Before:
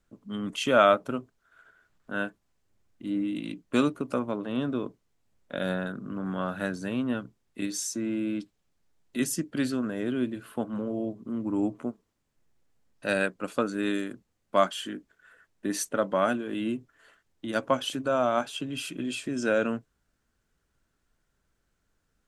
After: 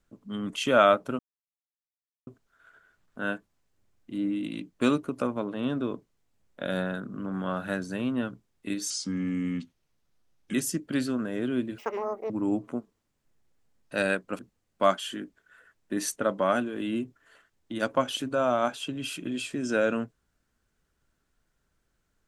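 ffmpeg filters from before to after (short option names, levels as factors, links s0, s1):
-filter_complex "[0:a]asplit=7[s0][s1][s2][s3][s4][s5][s6];[s0]atrim=end=1.19,asetpts=PTS-STARTPTS,afade=t=out:st=1.186:d=0.004:c=hsin,apad=pad_dur=1.08[s7];[s1]atrim=start=1.19:end=7.824,asetpts=PTS-STARTPTS,afade=t=in:d=0.004:c=hsin[s8];[s2]atrim=start=7.82:end=9.18,asetpts=PTS-STARTPTS,asetrate=36603,aresample=44100,atrim=end_sample=72260,asetpts=PTS-STARTPTS[s9];[s3]atrim=start=9.176:end=10.424[s10];[s4]atrim=start=10.42:end=11.41,asetpts=PTS-STARTPTS,asetrate=83790,aresample=44100,atrim=end_sample=22978,asetpts=PTS-STARTPTS[s11];[s5]atrim=start=11.406:end=13.502[s12];[s6]atrim=start=14.118[s13];[s7][s8]concat=n=2:v=0:a=1[s14];[s14][s9]acrossfade=d=0.004:c1=hsin:c2=hsin[s15];[s15][s10]acrossfade=d=0.004:c1=hsin:c2=hsin[s16];[s16][s11]acrossfade=d=0.004:c1=hsin:c2=hsin[s17];[s17][s12]acrossfade=d=0.004:c1=hsin:c2=hsin[s18];[s18][s13]acrossfade=d=0.004:c1=hsin:c2=hsin"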